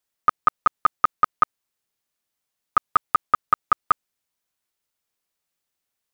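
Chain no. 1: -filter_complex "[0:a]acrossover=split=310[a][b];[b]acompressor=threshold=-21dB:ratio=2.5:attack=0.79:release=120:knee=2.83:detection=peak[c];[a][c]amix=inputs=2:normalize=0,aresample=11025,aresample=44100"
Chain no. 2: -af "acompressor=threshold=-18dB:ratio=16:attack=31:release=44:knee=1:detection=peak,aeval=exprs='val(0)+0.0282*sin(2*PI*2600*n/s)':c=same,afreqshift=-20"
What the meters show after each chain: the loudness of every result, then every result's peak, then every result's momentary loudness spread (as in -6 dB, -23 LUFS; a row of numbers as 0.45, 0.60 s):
-30.5, -25.5 LUFS; -13.0, -6.0 dBFS; 3, 8 LU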